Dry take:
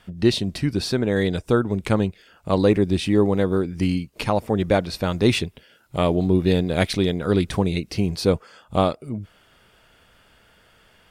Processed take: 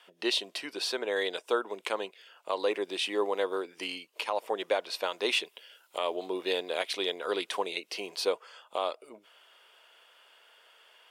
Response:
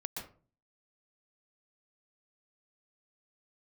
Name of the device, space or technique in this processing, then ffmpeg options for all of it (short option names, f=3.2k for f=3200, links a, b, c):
laptop speaker: -filter_complex "[0:a]asettb=1/sr,asplit=3[a][b][c];[a]atrim=end=5.454[d];[b]atrim=start=5.45:end=5.98,asetpts=PTS-STARTPTS,afade=t=in:d=0.004:c=qsin,afade=t=out:st=0.526:d=0.004:c=qsin,highshelf=f=4.3k:g=6.5[e];[c]atrim=start=5.976[f];[d][e]acrossfade=d=0.004:c1=hsin:c2=qsin[g];[g][f]acrossfade=d=0.004:c1=qsin:c2=hsin,highpass=f=440:w=0.5412,highpass=f=440:w=1.3066,equalizer=f=1k:t=o:w=0.24:g=6,equalizer=f=3k:t=o:w=0.55:g=7,alimiter=limit=-11.5dB:level=0:latency=1:release=186,volume=-5dB"